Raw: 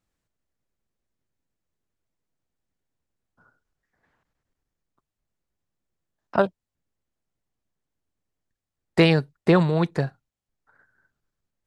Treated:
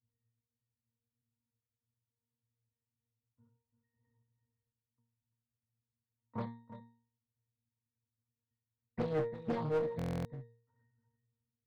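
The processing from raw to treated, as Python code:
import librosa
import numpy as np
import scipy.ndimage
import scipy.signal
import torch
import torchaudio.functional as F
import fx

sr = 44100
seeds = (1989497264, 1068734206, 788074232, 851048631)

p1 = fx.bass_treble(x, sr, bass_db=11, treble_db=-13)
p2 = fx.rider(p1, sr, range_db=10, speed_s=0.5)
p3 = p1 + (p2 * librosa.db_to_amplitude(2.5))
p4 = fx.octave_resonator(p3, sr, note='A#', decay_s=0.48)
p5 = fx.clip_asym(p4, sr, top_db=-29.0, bottom_db=-19.0)
p6 = p5 + fx.echo_single(p5, sr, ms=341, db=-12.0, dry=0)
p7 = fx.buffer_glitch(p6, sr, at_s=(9.97,), block=1024, repeats=11)
p8 = fx.doppler_dist(p7, sr, depth_ms=0.49)
y = p8 * librosa.db_to_amplitude(-3.0)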